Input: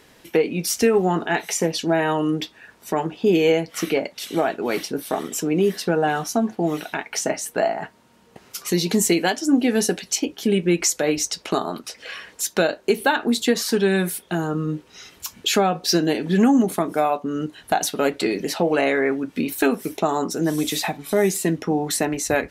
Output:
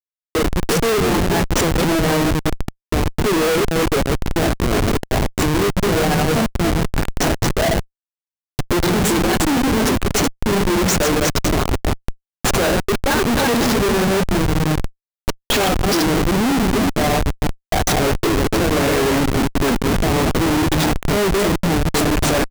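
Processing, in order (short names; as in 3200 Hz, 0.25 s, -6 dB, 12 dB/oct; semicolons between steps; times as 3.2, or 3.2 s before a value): reverse delay 0.192 s, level -4 dB; three bands offset in time mids, highs, lows 40/180 ms, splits 190/850 Hz; Schmitt trigger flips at -21 dBFS; gain +6 dB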